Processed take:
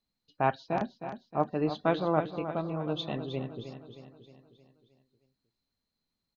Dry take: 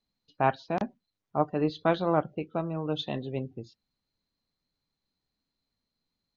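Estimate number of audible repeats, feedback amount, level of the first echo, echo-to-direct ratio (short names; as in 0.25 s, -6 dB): 5, 51%, -10.0 dB, -8.5 dB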